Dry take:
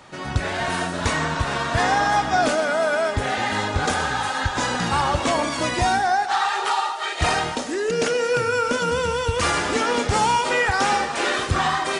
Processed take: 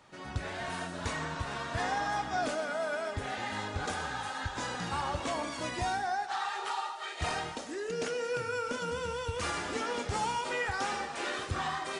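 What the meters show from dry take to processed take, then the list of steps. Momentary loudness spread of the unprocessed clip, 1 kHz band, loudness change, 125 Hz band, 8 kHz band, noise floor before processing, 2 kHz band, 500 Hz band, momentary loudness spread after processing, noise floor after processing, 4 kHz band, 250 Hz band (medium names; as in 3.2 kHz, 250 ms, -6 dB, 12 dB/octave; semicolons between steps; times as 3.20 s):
5 LU, -13.0 dB, -13.0 dB, -12.5 dB, -13.0 dB, -29 dBFS, -13.0 dB, -12.5 dB, 4 LU, -42 dBFS, -13.0 dB, -13.0 dB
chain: flange 1.3 Hz, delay 9.8 ms, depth 1.4 ms, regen -71%; trim -8.5 dB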